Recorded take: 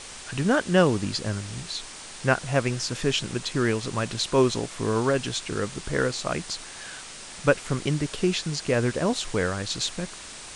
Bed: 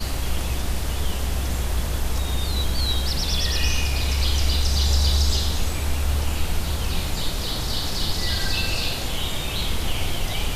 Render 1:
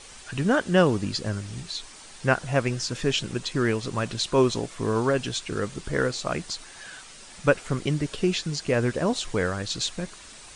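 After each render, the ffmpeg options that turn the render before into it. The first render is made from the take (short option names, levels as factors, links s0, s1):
-af "afftdn=nr=7:nf=-41"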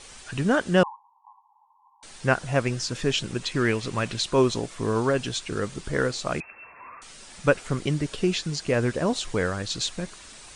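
-filter_complex "[0:a]asettb=1/sr,asplit=3[s0][s1][s2];[s0]atrim=end=0.834[s3];[s1]atrim=start=0.83:end=2.03,asetpts=PTS-STARTPTS,afade=t=in:d=0.004:c=qsin,afade=t=out:st=1.196:d=0.004:c=qsin,asuperpass=centerf=930:order=12:qfactor=3.3[s4];[s2]atrim=start=2.026[s5];[s3][s4]acrossfade=d=0.004:c1=hsin:c2=qsin[s6];[s6][s5]acrossfade=d=0.004:c1=qsin:c2=hsin,asettb=1/sr,asplit=3[s7][s8][s9];[s7]atrim=end=3.414[s10];[s8]atrim=start=3.41:end=4.21,asetpts=PTS-STARTPTS,afade=t=in:d=0.004:c=qsin,afade=t=out:st=0.796:d=0.004:c=qsin,equalizer=f=2300:w=1.5:g=5[s11];[s9]atrim=start=4.206[s12];[s10][s11]acrossfade=d=0.004:c1=hsin:c2=qsin[s13];[s13][s12]acrossfade=d=0.004:c1=qsin:c2=hsin,asettb=1/sr,asplit=3[s14][s15][s16];[s14]atrim=end=6.404[s17];[s15]atrim=start=6.4:end=7.02,asetpts=PTS-STARTPTS,afade=t=in:d=0.004:c=qsin,afade=t=out:st=0.616:d=0.004:c=qsin,lowpass=f=2300:t=q:w=0.5098,lowpass=f=2300:t=q:w=0.6013,lowpass=f=2300:t=q:w=0.9,lowpass=f=2300:t=q:w=2.563,afreqshift=-2700[s18];[s16]atrim=start=7.016[s19];[s17][s18]acrossfade=d=0.004:c1=hsin:c2=qsin[s20];[s20][s19]acrossfade=d=0.004:c1=qsin:c2=hsin"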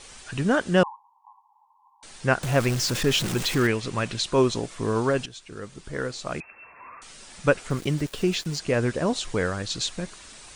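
-filter_complex "[0:a]asettb=1/sr,asplit=3[s0][s1][s2];[s0]atrim=end=2.434[s3];[s1]atrim=start=2.43:end=3.67,asetpts=PTS-STARTPTS,afade=t=in:d=0.004:c=qsin,afade=t=out:st=1.236:d=0.004:c=qsin,aeval=exprs='val(0)+0.5*0.0501*sgn(val(0))':c=same[s4];[s2]atrim=start=3.666[s5];[s3][s4]acrossfade=d=0.004:c1=hsin:c2=qsin[s6];[s6][s5]acrossfade=d=0.004:c1=qsin:c2=hsin,asettb=1/sr,asplit=3[s7][s8][s9];[s7]atrim=end=7.704[s10];[s8]atrim=start=7.7:end=8.59,asetpts=PTS-STARTPTS,afade=t=in:d=0.004:c=qsin,afade=t=out:st=0.886:d=0.004:c=qsin,aeval=exprs='val(0)*gte(abs(val(0)),0.0106)':c=same[s11];[s9]atrim=start=8.586[s12];[s10][s11]acrossfade=d=0.004:c1=hsin:c2=qsin[s13];[s13][s12]acrossfade=d=0.004:c1=qsin:c2=hsin,asplit=2[s14][s15];[s14]atrim=end=5.26,asetpts=PTS-STARTPTS,afade=t=out:st=5.256:d=0.004:c=hsin:silence=0.188365[s16];[s15]atrim=start=5.26,asetpts=PTS-STARTPTS,afade=t=in:d=1.73:silence=0.188365[s17];[s16][s17]concat=n=2:v=0:a=1"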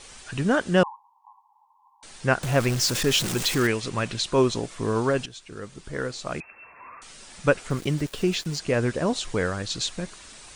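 -filter_complex "[0:a]asettb=1/sr,asplit=3[s0][s1][s2];[s0]atrim=end=2.814[s3];[s1]atrim=start=2.81:end=3.89,asetpts=PTS-STARTPTS,afade=t=in:d=0.004:c=qsin,afade=t=out:st=1.076:d=0.004:c=qsin,bass=f=250:g=-2,treble=f=4000:g=4[s4];[s2]atrim=start=3.886[s5];[s3][s4]acrossfade=d=0.004:c1=hsin:c2=qsin[s6];[s6][s5]acrossfade=d=0.004:c1=qsin:c2=hsin"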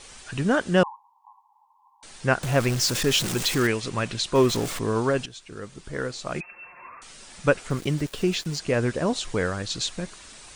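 -filter_complex "[0:a]asettb=1/sr,asplit=3[s0][s1][s2];[s0]atrim=end=4.354[s3];[s1]atrim=start=4.35:end=4.79,asetpts=PTS-STARTPTS,afade=t=in:d=0.004:c=qsin,afade=t=out:st=0.436:d=0.004:c=qsin,aeval=exprs='val(0)+0.5*0.0398*sgn(val(0))':c=same[s4];[s2]atrim=start=4.786[s5];[s3][s4]acrossfade=d=0.004:c1=hsin:c2=qsin[s6];[s6][s5]acrossfade=d=0.004:c1=qsin:c2=hsin,asettb=1/sr,asplit=3[s7][s8][s9];[s7]atrim=end=6.354[s10];[s8]atrim=start=6.35:end=6.88,asetpts=PTS-STARTPTS,afade=t=in:d=0.004:c=qsin,afade=t=out:st=0.526:d=0.004:c=qsin,aecho=1:1:5.6:0.65,atrim=end_sample=23373[s11];[s9]atrim=start=6.876[s12];[s10][s11]acrossfade=d=0.004:c1=hsin:c2=qsin[s13];[s13][s12]acrossfade=d=0.004:c1=qsin:c2=hsin"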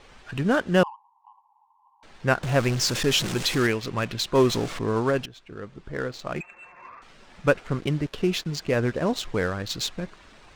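-af "adynamicsmooth=sensitivity=7:basefreq=2200"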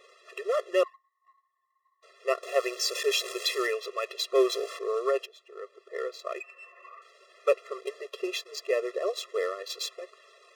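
-af "aeval=exprs='if(lt(val(0),0),0.708*val(0),val(0))':c=same,afftfilt=real='re*eq(mod(floor(b*sr/1024/350),2),1)':imag='im*eq(mod(floor(b*sr/1024/350),2),1)':win_size=1024:overlap=0.75"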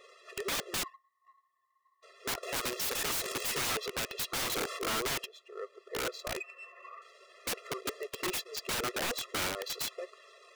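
-af "aeval=exprs='(mod(25.1*val(0)+1,2)-1)/25.1':c=same"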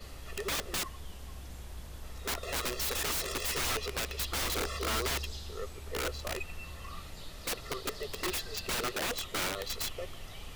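-filter_complex "[1:a]volume=0.0944[s0];[0:a][s0]amix=inputs=2:normalize=0"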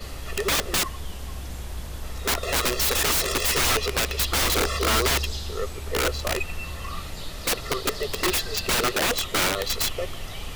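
-af "volume=3.35"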